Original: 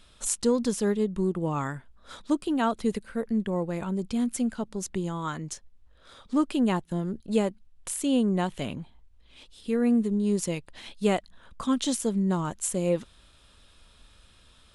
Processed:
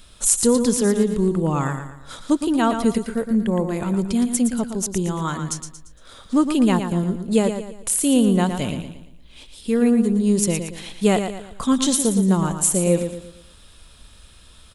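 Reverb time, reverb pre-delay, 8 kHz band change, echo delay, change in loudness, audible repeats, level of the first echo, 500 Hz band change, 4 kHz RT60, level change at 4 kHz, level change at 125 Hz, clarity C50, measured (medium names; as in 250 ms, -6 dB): no reverb, no reverb, +12.0 dB, 115 ms, +7.5 dB, 4, -8.0 dB, +6.5 dB, no reverb, +8.0 dB, +8.5 dB, no reverb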